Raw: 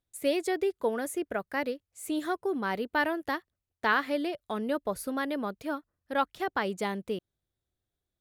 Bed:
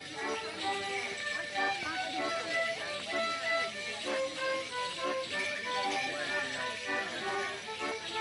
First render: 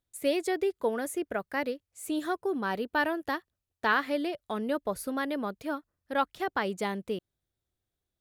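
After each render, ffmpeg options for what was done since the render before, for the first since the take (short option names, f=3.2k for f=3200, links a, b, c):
-filter_complex "[0:a]asettb=1/sr,asplit=3[a][b][c];[a]atrim=end=2.044[d];[b]atrim=start=2.04:end=3.91,asetpts=PTS-STARTPTS,afade=t=in:d=0.004:c=qsin,afade=t=out:st=1.866:d=0.004:c=qsin,bandreject=f=2.1k:w=14[e];[c]atrim=start=3.906[f];[d][e]acrossfade=d=0.004:c1=hsin:c2=qsin[g];[g][f]acrossfade=d=0.004:c1=qsin:c2=hsin"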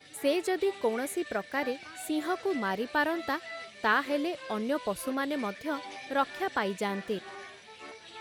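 -filter_complex "[1:a]volume=-10dB[a];[0:a][a]amix=inputs=2:normalize=0"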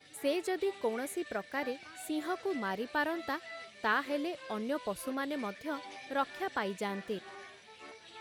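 -af "volume=-4.5dB"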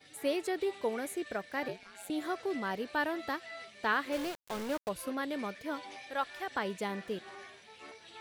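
-filter_complex "[0:a]asettb=1/sr,asplit=3[a][b][c];[a]atrim=end=1.684[d];[b]atrim=start=1.68:end=2.1,asetpts=PTS-STARTPTS,afade=t=in:d=0.004:c=qsin,afade=t=out:st=0.416:d=0.004:c=qsin,aeval=exprs='val(0)*sin(2*PI*95*n/s)':c=same[e];[c]atrim=start=2.096[f];[d][e]acrossfade=d=0.004:c1=hsin:c2=qsin[g];[g][f]acrossfade=d=0.004:c1=qsin:c2=hsin,asettb=1/sr,asplit=3[h][i][j];[h]atrim=end=4.124[k];[i]atrim=start=4.12:end=4.89,asetpts=PTS-STARTPTS,afade=t=in:d=0.004:c=qsin,afade=t=out:st=0.766:d=0.004:c=qsin,aeval=exprs='val(0)*gte(abs(val(0)),0.0133)':c=same[l];[j]atrim=start=4.886[m];[k][l]acrossfade=d=0.004:c1=hsin:c2=qsin[n];[n][m]acrossfade=d=0.004:c1=qsin:c2=hsin,asettb=1/sr,asplit=3[o][p][q];[o]atrim=end=6.024[r];[p]atrim=start=6.02:end=6.51,asetpts=PTS-STARTPTS,afade=t=in:d=0.004:c=qsin,afade=t=out:st=0.486:d=0.004:c=qsin,equalizer=f=230:t=o:w=1.8:g=-9.5[s];[q]atrim=start=6.506[t];[r][s]acrossfade=d=0.004:c1=hsin:c2=qsin[u];[u][t]acrossfade=d=0.004:c1=qsin:c2=hsin"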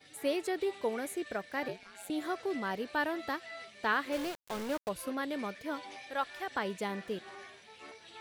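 -af anull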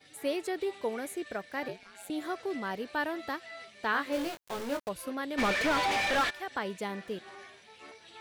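-filter_complex "[0:a]asettb=1/sr,asplit=3[a][b][c];[a]atrim=end=3.924[d];[b]atrim=start=3.92:end=4.85,asetpts=PTS-STARTPTS,afade=t=in:d=0.004:c=qsin,afade=t=out:st=0.926:d=0.004:c=qsin,asplit=2[e][f];[f]adelay=21,volume=-5dB[g];[e][g]amix=inputs=2:normalize=0,atrim=end_sample=41013[h];[c]atrim=start=4.846[i];[d][h]acrossfade=d=0.004:c1=hsin:c2=qsin[j];[j][i]acrossfade=d=0.004:c1=qsin:c2=hsin,asplit=3[k][l][m];[k]afade=t=out:st=5.37:d=0.02[n];[l]asplit=2[o][p];[p]highpass=f=720:p=1,volume=38dB,asoftclip=type=tanh:threshold=-19.5dB[q];[o][q]amix=inputs=2:normalize=0,lowpass=f=2.5k:p=1,volume=-6dB,afade=t=in:st=5.37:d=0.02,afade=t=out:st=6.29:d=0.02[r];[m]afade=t=in:st=6.29:d=0.02[s];[n][r][s]amix=inputs=3:normalize=0"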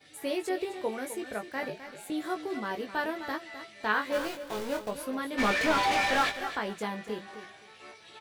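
-filter_complex "[0:a]asplit=2[a][b];[b]adelay=19,volume=-5dB[c];[a][c]amix=inputs=2:normalize=0,aecho=1:1:258|516:0.266|0.0479"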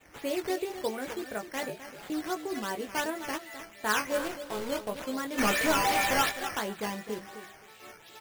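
-af "acrusher=samples=8:mix=1:aa=0.000001:lfo=1:lforange=8:lforate=2.8"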